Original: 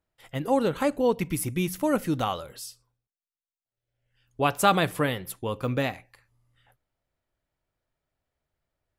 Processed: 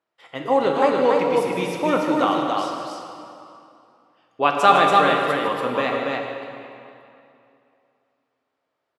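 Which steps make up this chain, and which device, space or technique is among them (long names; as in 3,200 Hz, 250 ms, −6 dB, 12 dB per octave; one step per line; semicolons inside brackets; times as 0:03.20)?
station announcement (band-pass filter 310–4,700 Hz; parametric band 1,100 Hz +5 dB 0.47 octaves; loudspeakers that aren't time-aligned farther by 53 metres −10 dB, 98 metres −3 dB; convolution reverb RT60 2.6 s, pre-delay 11 ms, DRR 2.5 dB)
level +3.5 dB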